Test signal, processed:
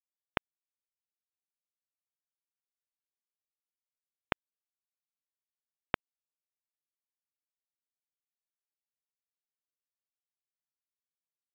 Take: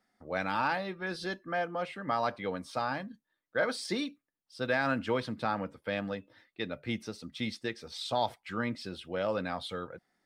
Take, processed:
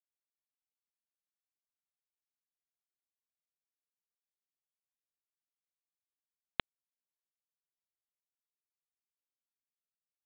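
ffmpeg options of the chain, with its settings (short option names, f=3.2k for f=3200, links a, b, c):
-af "acompressor=threshold=-44dB:ratio=6,aresample=8000,acrusher=bits=4:mix=0:aa=0.000001,aresample=44100,volume=15.5dB"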